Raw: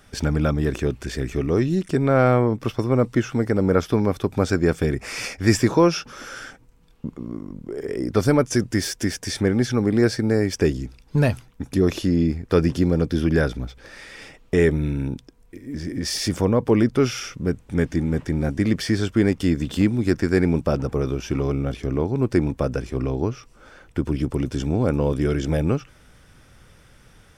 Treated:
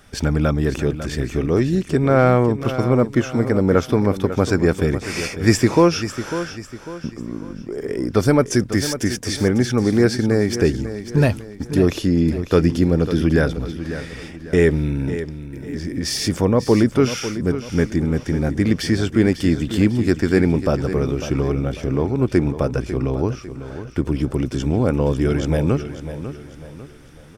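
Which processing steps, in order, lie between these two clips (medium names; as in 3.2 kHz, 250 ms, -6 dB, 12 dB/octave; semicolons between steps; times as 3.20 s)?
feedback delay 548 ms, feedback 40%, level -11.5 dB; trim +2.5 dB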